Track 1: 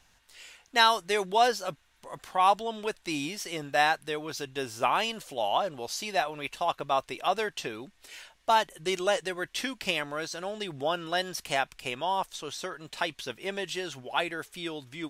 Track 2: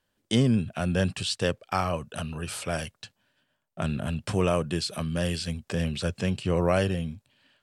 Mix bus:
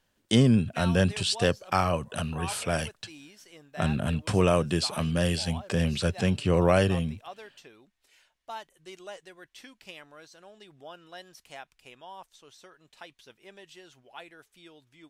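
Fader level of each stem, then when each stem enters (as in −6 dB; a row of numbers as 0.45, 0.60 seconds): −16.0, +2.0 decibels; 0.00, 0.00 seconds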